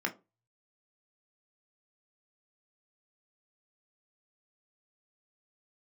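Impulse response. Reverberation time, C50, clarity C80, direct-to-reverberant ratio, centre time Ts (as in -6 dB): 0.30 s, 18.0 dB, 25.0 dB, 1.5 dB, 9 ms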